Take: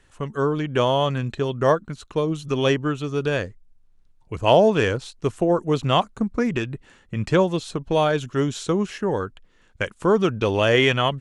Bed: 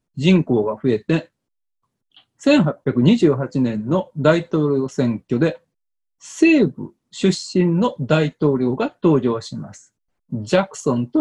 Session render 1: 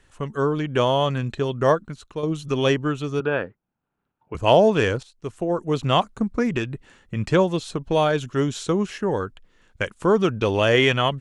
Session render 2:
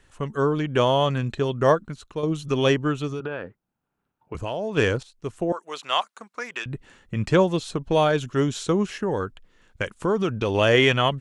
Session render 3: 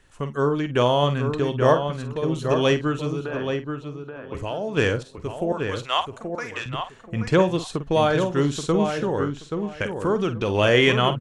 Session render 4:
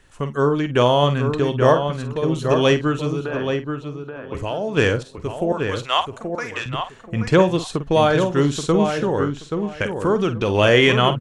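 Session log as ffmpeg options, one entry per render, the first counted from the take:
-filter_complex "[0:a]asettb=1/sr,asplit=3[a][b][c];[a]atrim=end=3.204[d];[b]atrim=start=3.2:end=4.35,asetpts=PTS-STARTPTS,afade=t=in:d=0.004:c=qsin,afade=t=out:st=1.146:d=0.004:c=qsin,highpass=170,equalizer=f=850:t=q:w=4:g=5,equalizer=f=1.4k:t=q:w=4:g=6,equalizer=f=2k:t=q:w=4:g=-5,lowpass=f=2.7k:w=0.5412,lowpass=f=2.7k:w=1.3066[e];[c]atrim=start=4.346[f];[d][e]acrossfade=d=0.004:c1=hsin:c2=qsin[g];[g][f]acrossfade=d=0.004:c1=qsin:c2=hsin,asplit=3[h][i][j];[h]atrim=end=2.23,asetpts=PTS-STARTPTS,afade=t=out:st=1.74:d=0.49:silence=0.421697[k];[i]atrim=start=2.23:end=5.03,asetpts=PTS-STARTPTS,afade=t=in:d=0.004:c=hsin:silence=0.421697,afade=t=out:st=2.796:d=0.004:c=hsin:silence=0.188365[l];[j]atrim=start=5.03,asetpts=PTS-STARTPTS,afade=t=in:d=0.88:silence=0.188365[m];[k][l][m]concat=n=3:v=0:a=1"
-filter_complex "[0:a]asplit=3[a][b][c];[a]afade=t=out:st=3.07:d=0.02[d];[b]acompressor=threshold=-26dB:ratio=6:attack=3.2:release=140:knee=1:detection=peak,afade=t=in:st=3.07:d=0.02,afade=t=out:st=4.76:d=0.02[e];[c]afade=t=in:st=4.76:d=0.02[f];[d][e][f]amix=inputs=3:normalize=0,asettb=1/sr,asplit=3[g][h][i];[g]atrim=end=5.524[j];[h]atrim=start=5.52:end=6.66,asetpts=PTS-STARTPTS,afade=t=in:d=0.004:c=qsin,afade=t=out:st=1.136:d=0.004:c=qsin,highpass=950[k];[i]atrim=start=6.656[l];[j][k]acrossfade=d=0.004:c1=hsin:c2=qsin[m];[m][l]acrossfade=d=0.004:c1=qsin:c2=hsin,asettb=1/sr,asplit=3[n][o][p];[n]atrim=end=8.884[q];[o]atrim=start=8.88:end=10.55,asetpts=PTS-STARTPTS,afade=t=in:d=0.004:c=qsin,afade=t=out:st=1.666:d=0.004:c=qsin,acompressor=threshold=-21dB:ratio=2:attack=3.2:release=140:knee=1:detection=peak[r];[p]atrim=start=10.546[s];[q][r]acrossfade=d=0.004:c1=hsin:c2=qsin[t];[t][s]acrossfade=d=0.004:c1=qsin:c2=hsin"
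-filter_complex "[0:a]asplit=2[a][b];[b]adelay=49,volume=-11.5dB[c];[a][c]amix=inputs=2:normalize=0,asplit=2[d][e];[e]adelay=829,lowpass=f=2.4k:p=1,volume=-6dB,asplit=2[f][g];[g]adelay=829,lowpass=f=2.4k:p=1,volume=0.21,asplit=2[h][i];[i]adelay=829,lowpass=f=2.4k:p=1,volume=0.21[j];[f][h][j]amix=inputs=3:normalize=0[k];[d][k]amix=inputs=2:normalize=0"
-af "volume=3.5dB,alimiter=limit=-3dB:level=0:latency=1"

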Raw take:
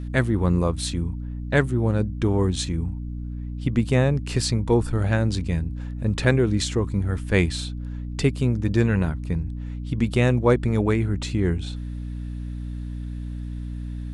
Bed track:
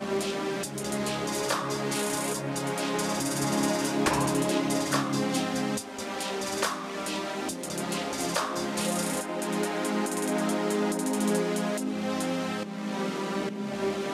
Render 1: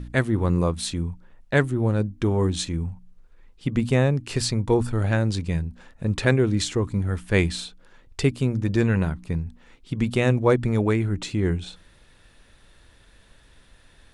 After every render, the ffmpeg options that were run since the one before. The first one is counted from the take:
-af "bandreject=f=60:t=h:w=4,bandreject=f=120:t=h:w=4,bandreject=f=180:t=h:w=4,bandreject=f=240:t=h:w=4,bandreject=f=300:t=h:w=4"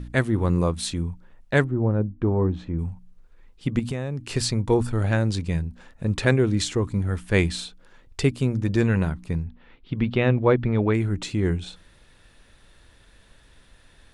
-filter_complex "[0:a]asettb=1/sr,asplit=3[a][b][c];[a]atrim=end=1.644[d];[b]atrim=start=1.64:end=2.79,asetpts=PTS-STARTPTS,afade=t=in:d=0.004:c=qsin,afade=t=out:st=1.146:d=0.004:c=qsin,lowpass=1.2k[e];[c]atrim=start=2.786[f];[d][e]acrossfade=d=0.004:c1=hsin:c2=qsin[g];[g][f]acrossfade=d=0.004:c1=qsin:c2=hsin,asettb=1/sr,asplit=3[h][i][j];[h]atrim=end=3.794[k];[i]atrim=start=3.79:end=4.35,asetpts=PTS-STARTPTS,afade=t=in:d=0.004:c=qsin,afade=t=out:st=0.556:d=0.004:c=qsin,acompressor=threshold=-25dB:ratio=4:attack=3.2:release=140:knee=1:detection=peak[l];[j]atrim=start=4.346[m];[k][l]acrossfade=d=0.004:c1=hsin:c2=qsin[n];[n][m]acrossfade=d=0.004:c1=qsin:c2=hsin,asplit=3[o][p][q];[o]afade=t=out:st=9.45:d=0.02[r];[p]lowpass=f=3.8k:w=0.5412,lowpass=f=3.8k:w=1.3066,afade=t=in:st=9.45:d=0.02,afade=t=out:st=10.93:d=0.02[s];[q]afade=t=in:st=10.93:d=0.02[t];[r][s][t]amix=inputs=3:normalize=0"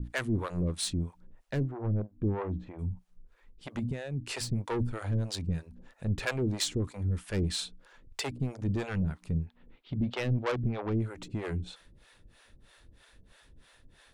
-filter_complex "[0:a]asoftclip=type=tanh:threshold=-22dB,acrossover=split=440[a][b];[a]aeval=exprs='val(0)*(1-1/2+1/2*cos(2*PI*3.1*n/s))':c=same[c];[b]aeval=exprs='val(0)*(1-1/2-1/2*cos(2*PI*3.1*n/s))':c=same[d];[c][d]amix=inputs=2:normalize=0"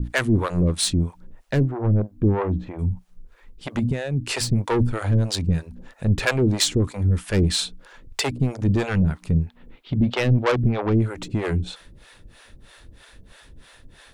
-af "volume=10.5dB"

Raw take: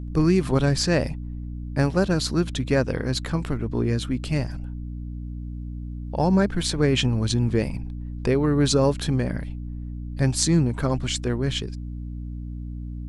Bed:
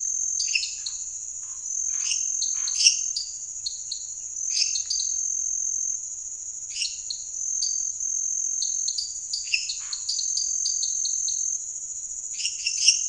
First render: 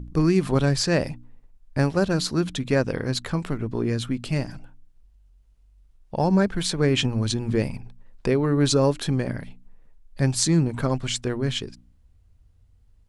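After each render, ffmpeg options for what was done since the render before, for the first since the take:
-af "bandreject=f=60:t=h:w=4,bandreject=f=120:t=h:w=4,bandreject=f=180:t=h:w=4,bandreject=f=240:t=h:w=4,bandreject=f=300:t=h:w=4"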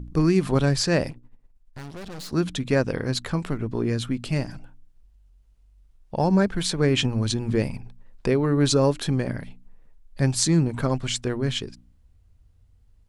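-filter_complex "[0:a]asettb=1/sr,asplit=3[a][b][c];[a]atrim=end=1.104[d];[b]atrim=start=1.1:end=2.33,asetpts=PTS-STARTPTS,afade=t=in:d=0.004:c=qsin,afade=t=out:st=1.226:d=0.004:c=qsin,aeval=exprs='(tanh(63.1*val(0)+0.8)-tanh(0.8))/63.1':c=same[e];[c]atrim=start=2.326[f];[d][e]acrossfade=d=0.004:c1=hsin:c2=qsin[g];[g][f]acrossfade=d=0.004:c1=qsin:c2=hsin"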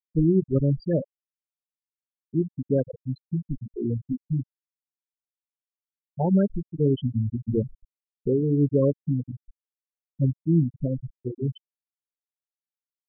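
-af "afftfilt=real='re*gte(hypot(re,im),0.355)':imag='im*gte(hypot(re,im),0.355)':win_size=1024:overlap=0.75,lowpass=f=1k:p=1"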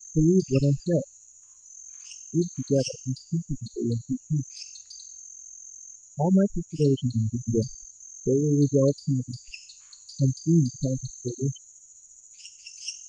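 -filter_complex "[1:a]volume=-17.5dB[a];[0:a][a]amix=inputs=2:normalize=0"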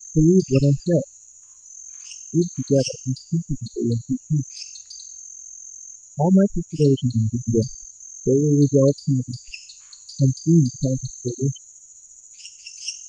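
-af "volume=5dB"

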